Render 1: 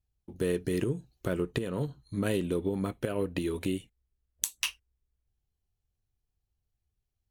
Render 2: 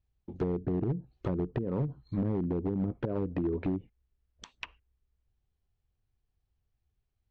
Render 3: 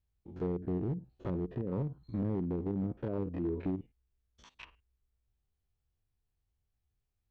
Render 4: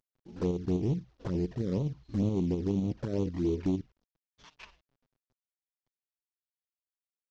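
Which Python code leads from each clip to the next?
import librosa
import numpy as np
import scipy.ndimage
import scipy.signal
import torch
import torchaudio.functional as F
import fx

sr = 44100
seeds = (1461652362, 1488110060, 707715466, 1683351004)

y1 = fx.env_lowpass_down(x, sr, base_hz=310.0, full_db=-26.5)
y1 = np.clip(10.0 ** (27.5 / 20.0) * y1, -1.0, 1.0) / 10.0 ** (27.5 / 20.0)
y1 = scipy.ndimage.gaussian_filter1d(y1, 1.8, mode='constant')
y1 = F.gain(torch.from_numpy(y1), 3.0).numpy()
y2 = fx.spec_steps(y1, sr, hold_ms=50)
y2 = F.gain(torch.from_numpy(y2), -2.5).numpy()
y3 = fx.cvsd(y2, sr, bps=32000)
y3 = fx.env_flanger(y3, sr, rest_ms=7.9, full_db=-30.0)
y3 = fx.volume_shaper(y3, sr, bpm=118, per_beat=2, depth_db=-4, release_ms=75.0, shape='slow start')
y3 = F.gain(torch.from_numpy(y3), 6.0).numpy()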